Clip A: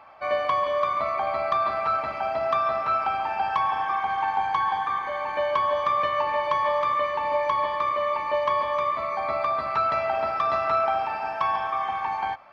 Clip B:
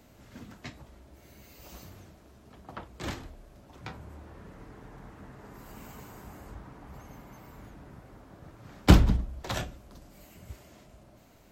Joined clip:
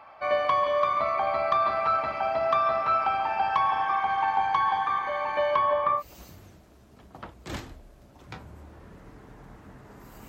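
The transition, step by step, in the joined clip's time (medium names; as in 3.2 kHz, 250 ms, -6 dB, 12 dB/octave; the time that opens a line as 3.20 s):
clip A
5.55–6.03 s: low-pass 3.6 kHz -> 1.3 kHz
5.99 s: go over to clip B from 1.53 s, crossfade 0.08 s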